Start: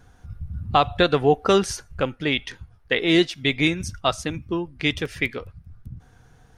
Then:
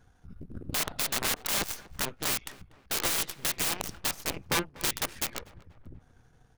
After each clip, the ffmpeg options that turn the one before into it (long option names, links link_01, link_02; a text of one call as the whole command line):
ffmpeg -i in.wav -filter_complex "[0:a]aeval=exprs='(mod(11.2*val(0)+1,2)-1)/11.2':channel_layout=same,aeval=exprs='0.0944*(cos(1*acos(clip(val(0)/0.0944,-1,1)))-cos(1*PI/2))+0.0422*(cos(3*acos(clip(val(0)/0.0944,-1,1)))-cos(3*PI/2))+0.00473*(cos(8*acos(clip(val(0)/0.0944,-1,1)))-cos(8*PI/2))':channel_layout=same,asplit=2[link_01][link_02];[link_02]adelay=242,lowpass=frequency=2000:poles=1,volume=-19dB,asplit=2[link_03][link_04];[link_04]adelay=242,lowpass=frequency=2000:poles=1,volume=0.54,asplit=2[link_05][link_06];[link_06]adelay=242,lowpass=frequency=2000:poles=1,volume=0.54,asplit=2[link_07][link_08];[link_08]adelay=242,lowpass=frequency=2000:poles=1,volume=0.54[link_09];[link_01][link_03][link_05][link_07][link_09]amix=inputs=5:normalize=0" out.wav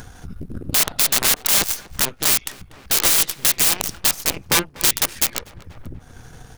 ffmpeg -i in.wav -filter_complex "[0:a]highshelf=frequency=3400:gain=7.5,asplit=2[link_01][link_02];[link_02]acompressor=mode=upward:threshold=-27dB:ratio=2.5,volume=2dB[link_03];[link_01][link_03]amix=inputs=2:normalize=0" out.wav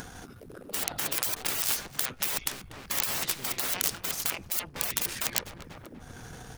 ffmpeg -i in.wav -af "afftfilt=real='re*lt(hypot(re,im),0.0794)':imag='im*lt(hypot(re,im),0.0794)':win_size=1024:overlap=0.75" out.wav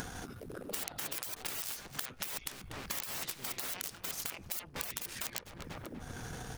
ffmpeg -i in.wav -af "acompressor=threshold=-36dB:ratio=10,volume=1dB" out.wav